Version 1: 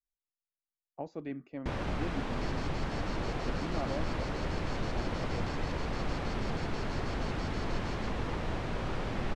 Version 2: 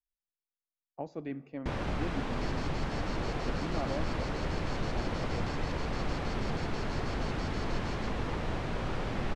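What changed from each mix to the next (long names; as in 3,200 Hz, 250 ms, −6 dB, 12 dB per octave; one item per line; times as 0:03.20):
reverb: on, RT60 2.2 s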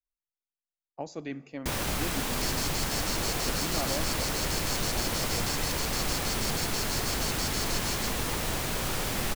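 master: remove head-to-tape spacing loss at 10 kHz 32 dB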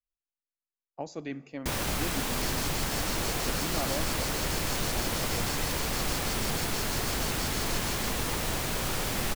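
second sound −5.0 dB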